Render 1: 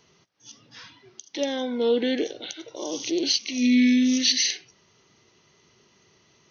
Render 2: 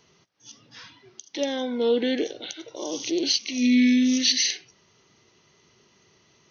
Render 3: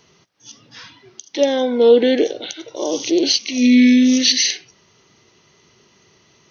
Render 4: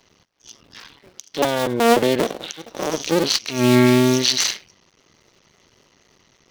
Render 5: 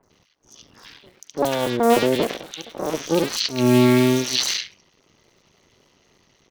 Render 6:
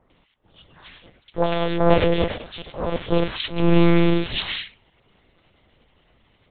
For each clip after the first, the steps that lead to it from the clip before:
no audible change
dynamic bell 540 Hz, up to +6 dB, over -39 dBFS, Q 1; trim +6 dB
cycle switcher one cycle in 2, muted
three bands offset in time lows, highs, mids 30/100 ms, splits 1.5/5.7 kHz; trim -1 dB
monotone LPC vocoder at 8 kHz 170 Hz; trim +1 dB

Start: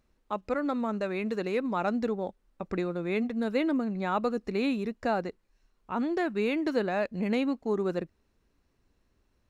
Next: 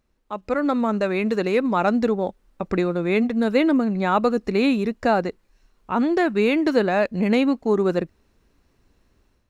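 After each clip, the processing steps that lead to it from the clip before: level rider gain up to 9 dB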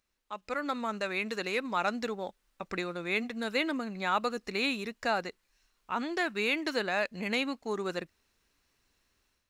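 tilt shelf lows -8.5 dB; trim -8.5 dB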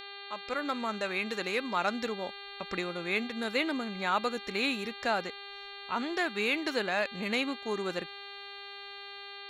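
mains buzz 400 Hz, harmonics 11, -45 dBFS 0 dB/octave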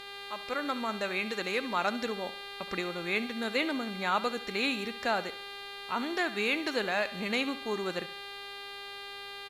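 send-on-delta sampling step -50.5 dBFS; feedback delay 70 ms, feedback 40%, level -16 dB; resampled via 32 kHz

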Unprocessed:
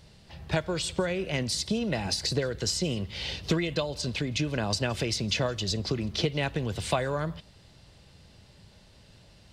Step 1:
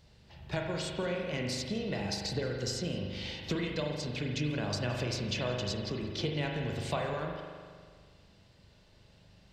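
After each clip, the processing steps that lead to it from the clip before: peaking EQ 9.6 kHz -9.5 dB 0.28 oct; spring tank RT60 1.8 s, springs 40 ms, chirp 55 ms, DRR 0.5 dB; trim -7.5 dB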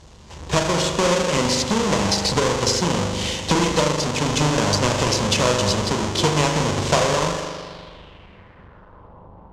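square wave that keeps the level; low-pass sweep 6.7 kHz -> 880 Hz, 7.39–9.26 s; graphic EQ with 31 bands 125 Hz -6 dB, 500 Hz +4 dB, 1 kHz +8 dB, 3.15 kHz +3 dB; trim +9 dB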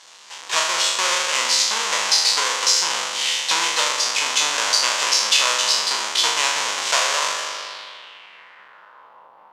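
spectral sustain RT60 0.74 s; high-pass 1.3 kHz 12 dB/octave; in parallel at -1 dB: compression, threshold -30 dBFS, peak gain reduction 15 dB; on the sum: trim +1 dB

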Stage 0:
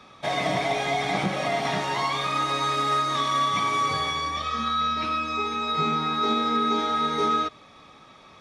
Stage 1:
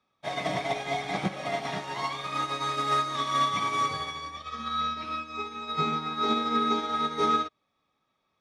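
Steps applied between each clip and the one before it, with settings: upward expansion 2.5:1, over -39 dBFS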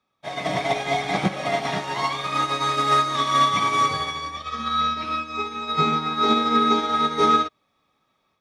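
level rider gain up to 7 dB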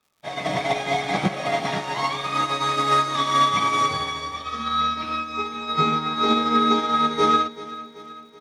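crackle 180 per s -51 dBFS; feedback delay 382 ms, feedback 55%, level -16.5 dB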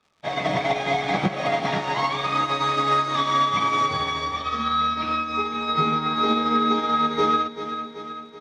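compression 2:1, threshold -28 dBFS, peak gain reduction 8 dB; distance through air 86 m; trim +5.5 dB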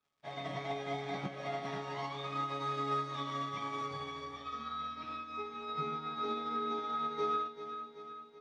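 feedback comb 140 Hz, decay 0.29 s, harmonics all, mix 80%; trim -8.5 dB

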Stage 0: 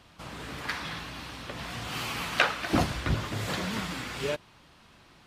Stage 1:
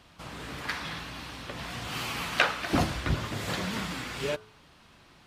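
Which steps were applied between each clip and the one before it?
de-hum 107.7 Hz, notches 14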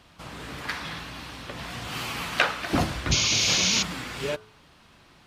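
painted sound noise, 3.11–3.83 s, 2.1–6.9 kHz -25 dBFS; trim +1.5 dB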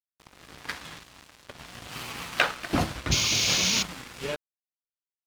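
crossover distortion -36 dBFS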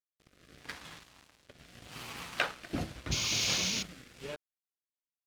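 rotary cabinet horn 0.8 Hz; trim -6 dB

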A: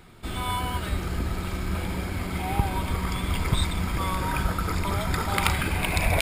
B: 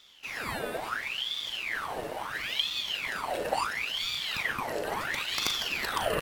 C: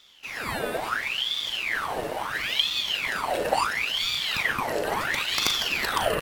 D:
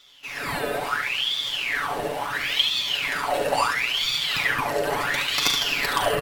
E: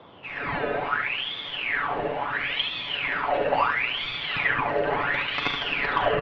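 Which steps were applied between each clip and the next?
doubling 39 ms -11 dB; ring modulator with a swept carrier 2 kHz, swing 75%, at 0.73 Hz; trim -4 dB
level rider gain up to 4 dB; trim +1.5 dB
comb 7 ms; on a send: delay 72 ms -6.5 dB
low-pass 2.8 kHz 24 dB/octave; band noise 84–1100 Hz -50 dBFS

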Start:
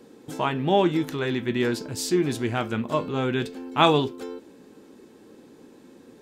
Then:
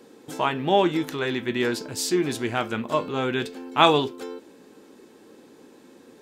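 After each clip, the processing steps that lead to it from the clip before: bass shelf 240 Hz -9 dB; trim +2.5 dB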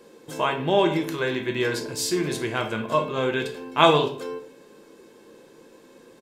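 comb 1.9 ms, depth 36%; reverberation RT60 0.55 s, pre-delay 6 ms, DRR 4.5 dB; trim -1 dB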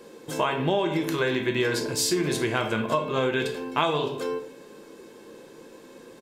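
compression 8:1, threshold -24 dBFS, peak gain reduction 13.5 dB; trim +3.5 dB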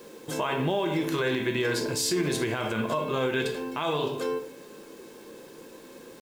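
peak limiter -18 dBFS, peak gain reduction 9.5 dB; bit crusher 9-bit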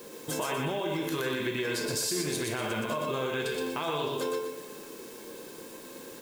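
treble shelf 6.7 kHz +7.5 dB; compression, threshold -29 dBFS, peak gain reduction 8 dB; on a send: thinning echo 121 ms, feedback 37%, high-pass 490 Hz, level -3 dB

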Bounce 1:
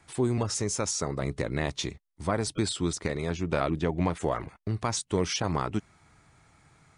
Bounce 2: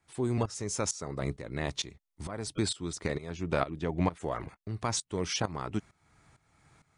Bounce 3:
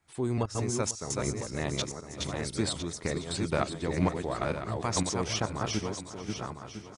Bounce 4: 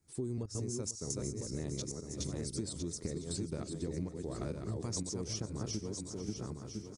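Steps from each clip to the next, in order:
tremolo saw up 2.2 Hz, depth 85%
backward echo that repeats 503 ms, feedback 44%, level -3 dB; feedback delay 496 ms, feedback 48%, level -17 dB
high-order bell 1.5 kHz -14 dB 2.9 oct; compression 12:1, threshold -35 dBFS, peak gain reduction 15 dB; trim +1 dB

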